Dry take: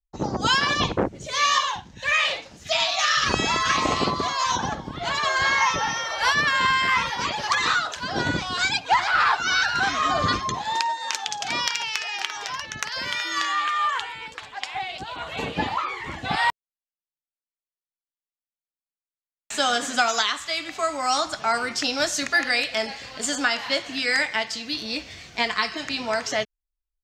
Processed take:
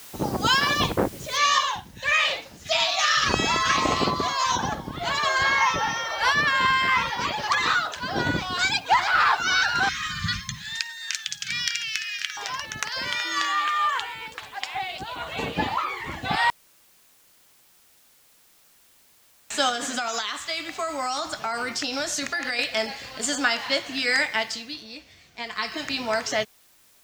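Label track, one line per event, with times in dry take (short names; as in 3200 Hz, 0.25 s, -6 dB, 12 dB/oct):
1.370000	1.370000	noise floor step -44 dB -58 dB
5.430000	8.590000	bell 7300 Hz -4 dB 1.4 oct
9.890000	12.370000	elliptic band-stop 180–1600 Hz, stop band 70 dB
19.690000	22.590000	compressor 10:1, threshold -23 dBFS
24.510000	25.760000	dip -11.5 dB, fades 0.44 s quadratic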